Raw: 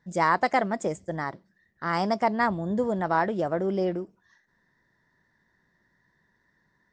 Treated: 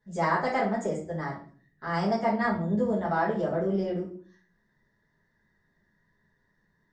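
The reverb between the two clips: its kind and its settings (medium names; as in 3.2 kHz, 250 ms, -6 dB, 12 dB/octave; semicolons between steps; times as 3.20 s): simulated room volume 39 m³, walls mixed, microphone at 1.5 m; trim -12 dB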